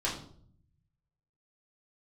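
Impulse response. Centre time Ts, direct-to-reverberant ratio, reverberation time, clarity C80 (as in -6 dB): 30 ms, -6.0 dB, 0.60 s, 11.0 dB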